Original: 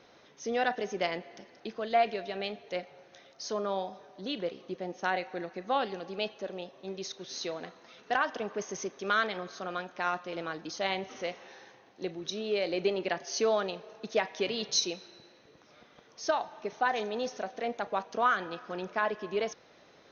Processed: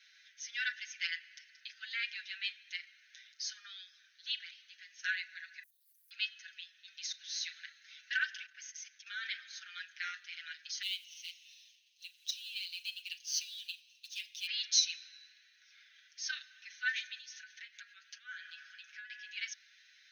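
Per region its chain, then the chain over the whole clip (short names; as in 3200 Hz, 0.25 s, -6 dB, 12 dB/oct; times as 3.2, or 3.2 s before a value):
5.63–6.11 sample gate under -56 dBFS + inverse Chebyshev high-pass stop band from 2900 Hz, stop band 70 dB + sample leveller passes 2
8.46–9.27 HPF 280 Hz + level quantiser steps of 12 dB
10.82–14.47 Chebyshev band-stop 250–2700 Hz, order 4 + low shelf 230 Hz -11 dB + short-mantissa float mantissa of 2-bit
17.18–19.1 HPF 230 Hz + doubler 14 ms -10.5 dB + compressor 10:1, threshold -37 dBFS
whole clip: steep high-pass 1500 Hz 96 dB/oct; comb 6.6 ms, depth 81%; gain -1 dB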